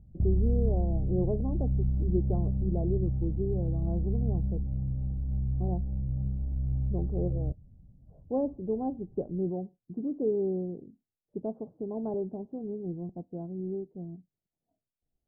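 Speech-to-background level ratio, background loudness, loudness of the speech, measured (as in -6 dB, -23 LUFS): -4.0 dB, -31.0 LUFS, -35.0 LUFS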